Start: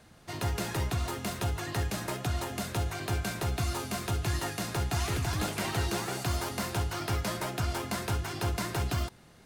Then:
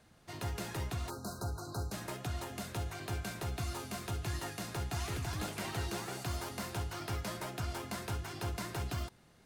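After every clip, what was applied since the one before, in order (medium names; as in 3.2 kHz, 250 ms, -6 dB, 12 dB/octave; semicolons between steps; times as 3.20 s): spectral selection erased 1.10–1.92 s, 1.6–3.8 kHz; trim -7 dB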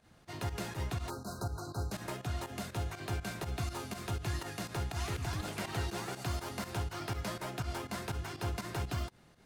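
treble shelf 6.3 kHz -4 dB; volume shaper 122 bpm, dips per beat 2, -12 dB, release 95 ms; trim +2 dB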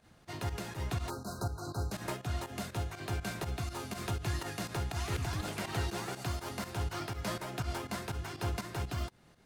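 random flutter of the level, depth 55%; trim +4 dB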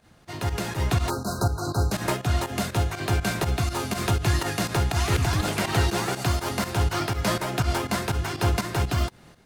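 level rider gain up to 7 dB; trim +5 dB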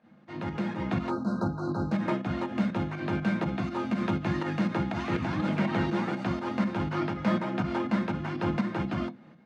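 band-pass 160–2300 Hz; on a send at -5.5 dB: reverberation RT60 0.15 s, pre-delay 3 ms; on the sum: trim -5 dB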